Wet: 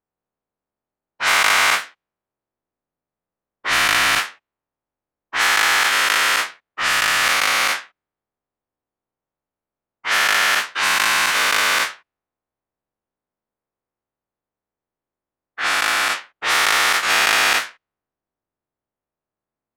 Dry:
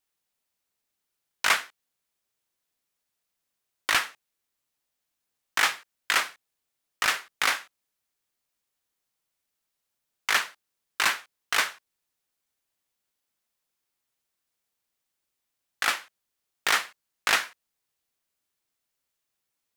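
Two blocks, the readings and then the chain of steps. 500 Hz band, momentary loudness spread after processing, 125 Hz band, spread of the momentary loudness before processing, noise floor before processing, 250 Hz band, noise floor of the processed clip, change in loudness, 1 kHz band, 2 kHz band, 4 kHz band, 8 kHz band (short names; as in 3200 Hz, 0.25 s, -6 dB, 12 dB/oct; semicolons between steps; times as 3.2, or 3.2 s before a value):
+12.0 dB, 9 LU, n/a, 11 LU, -83 dBFS, +12.0 dB, under -85 dBFS, +10.0 dB, +12.0 dB, +11.5 dB, +11.5 dB, +11.5 dB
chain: spectral dilation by 0.48 s; low-pass opened by the level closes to 910 Hz, open at -14.5 dBFS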